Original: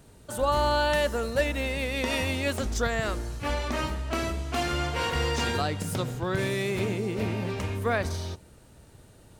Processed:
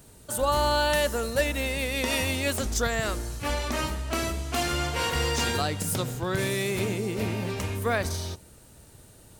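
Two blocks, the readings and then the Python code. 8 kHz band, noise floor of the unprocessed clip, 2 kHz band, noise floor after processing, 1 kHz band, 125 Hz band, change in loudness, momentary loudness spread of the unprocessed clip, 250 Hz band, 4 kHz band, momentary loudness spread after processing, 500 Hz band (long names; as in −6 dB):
+7.0 dB, −54 dBFS, +1.0 dB, −52 dBFS, +0.5 dB, 0.0 dB, +1.0 dB, 6 LU, 0.0 dB, +3.0 dB, 7 LU, 0.0 dB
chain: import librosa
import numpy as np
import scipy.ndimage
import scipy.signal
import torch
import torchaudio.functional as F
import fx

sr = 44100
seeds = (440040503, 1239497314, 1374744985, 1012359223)

y = fx.high_shelf(x, sr, hz=6000.0, db=11.0)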